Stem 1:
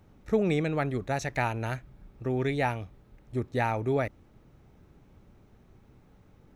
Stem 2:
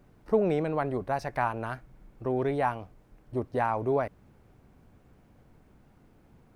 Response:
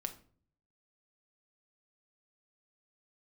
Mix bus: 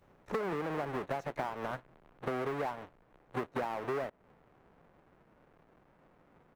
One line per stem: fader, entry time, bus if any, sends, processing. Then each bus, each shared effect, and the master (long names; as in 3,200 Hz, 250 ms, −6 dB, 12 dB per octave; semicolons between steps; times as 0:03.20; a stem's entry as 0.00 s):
−7.5 dB, 0.00 s, no send, tilt shelving filter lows −4 dB; automatic ducking −12 dB, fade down 0.55 s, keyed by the second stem
−2.0 dB, 17 ms, polarity flipped, send −21.5 dB, each half-wave held at its own peak; three-way crossover with the lows and the highs turned down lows −16 dB, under 310 Hz, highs −21 dB, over 2,300 Hz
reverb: on, RT60 0.50 s, pre-delay 5 ms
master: parametric band 160 Hz +6.5 dB 0.54 octaves; leveller curve on the samples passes 1; downward compressor 12 to 1, threshold −32 dBFS, peak gain reduction 14.5 dB